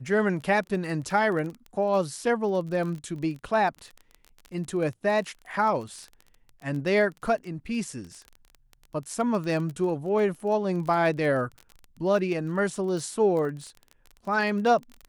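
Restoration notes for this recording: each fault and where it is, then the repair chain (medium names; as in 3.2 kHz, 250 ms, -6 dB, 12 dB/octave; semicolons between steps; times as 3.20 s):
crackle 22 per s -33 dBFS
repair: de-click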